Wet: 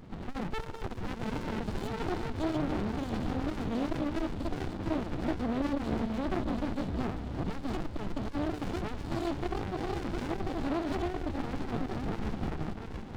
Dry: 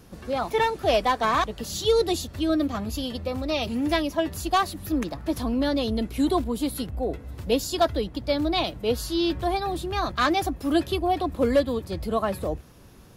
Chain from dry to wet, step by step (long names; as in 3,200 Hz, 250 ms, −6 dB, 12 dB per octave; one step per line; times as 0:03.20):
delay that plays each chunk backwards 177 ms, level −6 dB
dynamic equaliser 2,900 Hz, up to −5 dB, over −44 dBFS, Q 1.6
downward compressor 6 to 1, threshold −28 dBFS, peak gain reduction 13 dB
notch comb filter 1,400 Hz
hollow resonant body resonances 580/870 Hz, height 6 dB, ringing for 25 ms
soft clipping −27 dBFS, distortion −13 dB
linear-phase brick-wall low-pass 4,400 Hz
feedback echo with a high-pass in the loop 689 ms, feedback 69%, high-pass 370 Hz, level −8 dB
windowed peak hold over 65 samples
level +5.5 dB